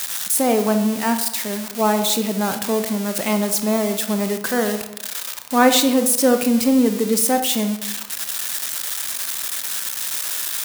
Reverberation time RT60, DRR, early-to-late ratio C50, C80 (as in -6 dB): 1.0 s, 7.5 dB, 9.5 dB, 12.0 dB